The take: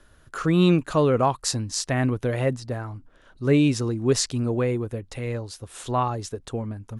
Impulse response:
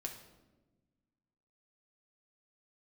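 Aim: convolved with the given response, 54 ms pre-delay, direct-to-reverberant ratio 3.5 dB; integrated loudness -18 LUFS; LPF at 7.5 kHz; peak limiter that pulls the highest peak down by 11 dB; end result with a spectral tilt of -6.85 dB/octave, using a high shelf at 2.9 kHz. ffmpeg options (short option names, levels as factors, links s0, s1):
-filter_complex "[0:a]lowpass=7500,highshelf=f=2900:g=-6,alimiter=limit=0.106:level=0:latency=1,asplit=2[s0][s1];[1:a]atrim=start_sample=2205,adelay=54[s2];[s1][s2]afir=irnorm=-1:irlink=0,volume=0.794[s3];[s0][s3]amix=inputs=2:normalize=0,volume=2.99"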